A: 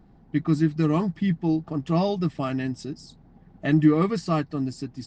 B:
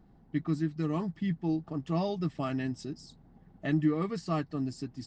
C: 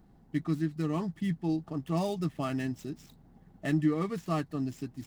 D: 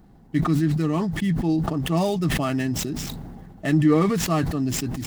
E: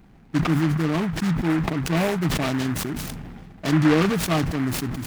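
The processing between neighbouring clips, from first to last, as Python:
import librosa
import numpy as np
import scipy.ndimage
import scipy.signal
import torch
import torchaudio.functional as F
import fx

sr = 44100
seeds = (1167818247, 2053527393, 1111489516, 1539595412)

y1 = fx.notch(x, sr, hz=2400.0, q=28.0)
y1 = fx.rider(y1, sr, range_db=3, speed_s=0.5)
y1 = F.gain(torch.from_numpy(y1), -8.0).numpy()
y2 = scipy.ndimage.median_filter(y1, 9, mode='constant')
y2 = fx.high_shelf(y2, sr, hz=4300.0, db=9.5)
y3 = fx.sustainer(y2, sr, db_per_s=27.0)
y3 = F.gain(torch.from_numpy(y3), 7.5).numpy()
y4 = fx.noise_mod_delay(y3, sr, seeds[0], noise_hz=1300.0, depth_ms=0.13)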